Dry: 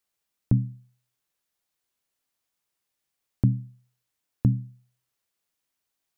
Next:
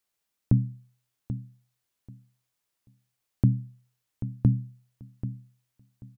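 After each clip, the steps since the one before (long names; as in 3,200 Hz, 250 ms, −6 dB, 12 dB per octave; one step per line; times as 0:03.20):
repeating echo 786 ms, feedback 20%, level −12 dB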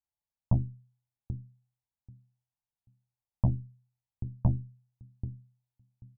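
harmonic generator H 6 −10 dB, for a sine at −8 dBFS
drawn EQ curve 100 Hz 0 dB, 450 Hz −18 dB, 850 Hz −4 dB, 1,300 Hz −21 dB
level −2.5 dB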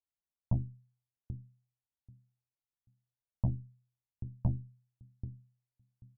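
low-pass filter 1,000 Hz 6 dB per octave
level −5 dB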